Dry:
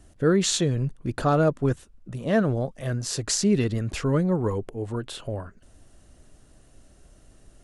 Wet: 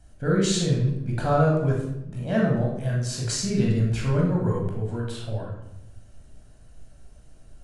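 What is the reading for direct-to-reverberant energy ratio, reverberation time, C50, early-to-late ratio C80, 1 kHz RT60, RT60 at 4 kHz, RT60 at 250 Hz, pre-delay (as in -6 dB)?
-2.5 dB, 0.85 s, 2.5 dB, 6.0 dB, 0.80 s, 0.60 s, 1.2 s, 17 ms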